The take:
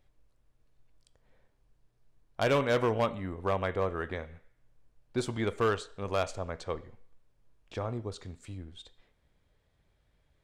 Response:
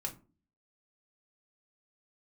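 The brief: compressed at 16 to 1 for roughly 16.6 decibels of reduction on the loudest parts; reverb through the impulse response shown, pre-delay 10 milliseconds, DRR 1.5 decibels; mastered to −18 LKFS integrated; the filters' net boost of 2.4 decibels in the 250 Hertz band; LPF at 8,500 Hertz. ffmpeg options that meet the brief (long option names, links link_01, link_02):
-filter_complex "[0:a]lowpass=8500,equalizer=frequency=250:width_type=o:gain=3,acompressor=threshold=-39dB:ratio=16,asplit=2[link_01][link_02];[1:a]atrim=start_sample=2205,adelay=10[link_03];[link_02][link_03]afir=irnorm=-1:irlink=0,volume=-1.5dB[link_04];[link_01][link_04]amix=inputs=2:normalize=0,volume=24.5dB"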